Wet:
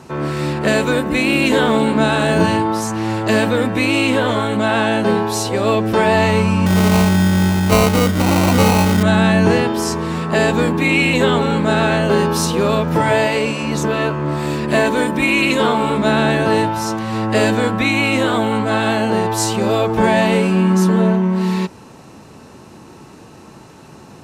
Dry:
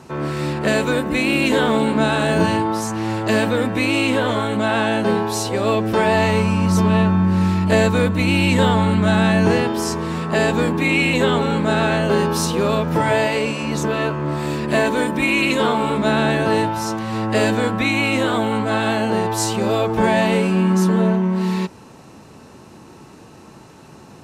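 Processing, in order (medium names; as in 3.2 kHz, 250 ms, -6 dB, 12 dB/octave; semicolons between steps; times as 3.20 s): 6.66–9.03 s: sample-rate reducer 1.7 kHz, jitter 0%; trim +2.5 dB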